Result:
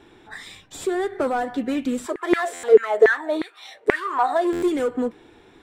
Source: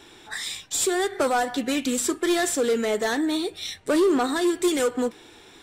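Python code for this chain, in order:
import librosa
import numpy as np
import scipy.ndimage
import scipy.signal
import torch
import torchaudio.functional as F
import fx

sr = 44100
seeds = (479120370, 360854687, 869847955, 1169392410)

y = fx.curve_eq(x, sr, hz=(260.0, 2000.0, 5500.0), db=(0, -6, -16))
y = fx.filter_lfo_highpass(y, sr, shape='saw_down', hz=fx.line((2.05, 6.5), (4.54, 1.1)), low_hz=390.0, high_hz=2000.0, q=7.4, at=(2.05, 4.54), fade=0.02)
y = fx.buffer_glitch(y, sr, at_s=(2.53, 4.52), block=512, repeats=8)
y = y * librosa.db_to_amplitude(2.0)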